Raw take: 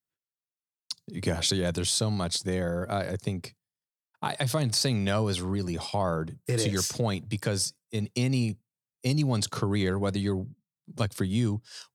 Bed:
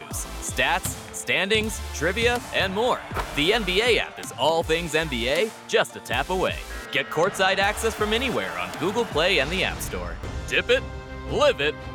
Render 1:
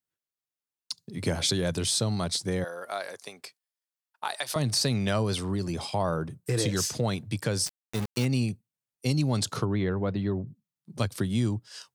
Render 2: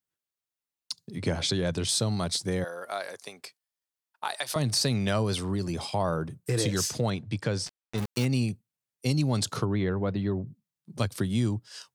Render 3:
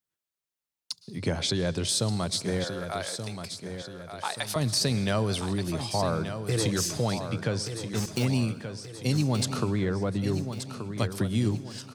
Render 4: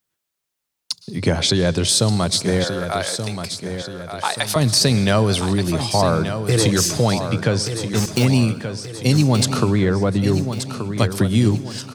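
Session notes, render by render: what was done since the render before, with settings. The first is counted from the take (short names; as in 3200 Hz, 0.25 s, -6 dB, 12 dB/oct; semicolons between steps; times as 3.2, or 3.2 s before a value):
2.64–4.56 HPF 690 Hz; 7.66–8.25 sample gate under -30.5 dBFS; 9.65–10.47 air absorption 360 m
1.18–1.89 air absorption 59 m; 7.1–7.98 air absorption 84 m
feedback echo 1.179 s, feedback 46%, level -9 dB; plate-style reverb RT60 1.2 s, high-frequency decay 0.95×, pre-delay 0.1 s, DRR 18 dB
gain +10 dB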